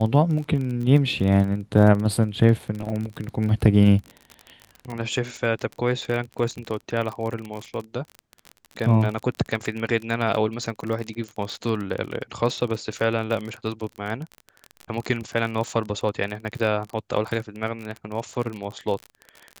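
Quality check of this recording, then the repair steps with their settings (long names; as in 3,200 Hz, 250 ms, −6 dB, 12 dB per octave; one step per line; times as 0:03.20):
surface crackle 33 per second −28 dBFS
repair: click removal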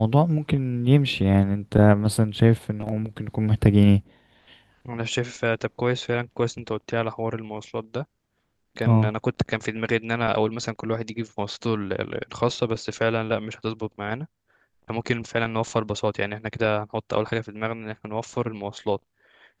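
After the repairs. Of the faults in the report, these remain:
none of them is left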